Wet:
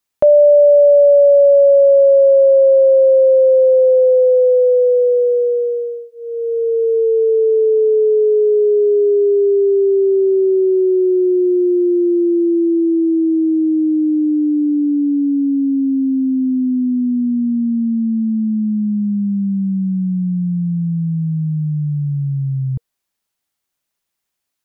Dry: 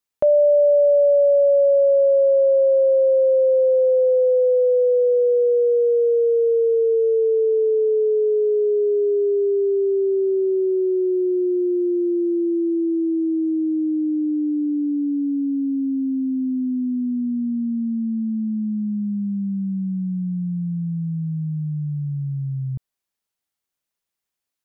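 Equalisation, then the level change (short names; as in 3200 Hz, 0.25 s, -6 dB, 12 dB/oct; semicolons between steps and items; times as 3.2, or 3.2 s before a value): notch 470 Hz, Q 13; +6.5 dB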